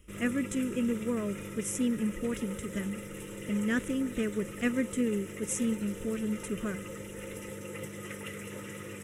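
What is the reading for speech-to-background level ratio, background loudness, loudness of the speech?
8.5 dB, -41.5 LUFS, -33.0 LUFS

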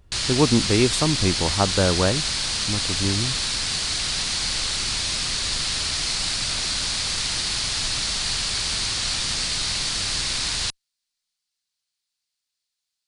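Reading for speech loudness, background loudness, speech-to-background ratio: -23.5 LUFS, -22.5 LUFS, -1.0 dB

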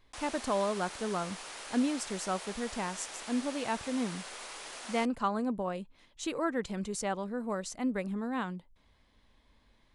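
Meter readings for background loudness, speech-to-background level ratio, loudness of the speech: -43.0 LUFS, 8.5 dB, -34.5 LUFS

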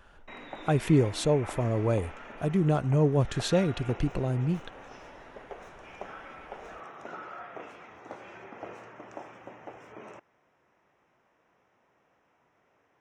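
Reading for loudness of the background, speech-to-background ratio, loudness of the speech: -44.5 LUFS, 17.0 dB, -27.5 LUFS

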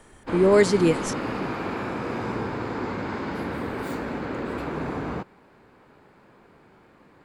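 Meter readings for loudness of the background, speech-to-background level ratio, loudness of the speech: -30.5 LUFS, 9.5 dB, -21.0 LUFS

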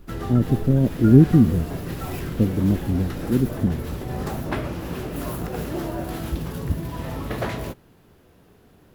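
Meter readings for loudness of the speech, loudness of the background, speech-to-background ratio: -20.0 LUFS, -30.5 LUFS, 10.5 dB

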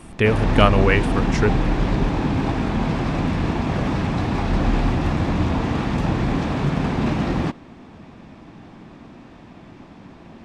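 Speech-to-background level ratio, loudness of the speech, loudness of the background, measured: 2.0 dB, -20.0 LUFS, -22.0 LUFS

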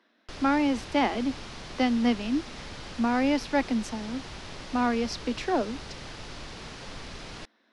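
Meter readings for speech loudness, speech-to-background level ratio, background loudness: -28.0 LUFS, 13.0 dB, -41.0 LUFS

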